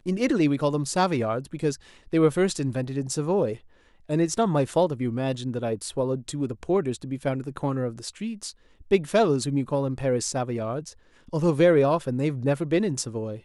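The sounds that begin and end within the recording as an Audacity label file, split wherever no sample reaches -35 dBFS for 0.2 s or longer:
2.130000	3.550000	sound
4.090000	8.510000	sound
8.910000	10.900000	sound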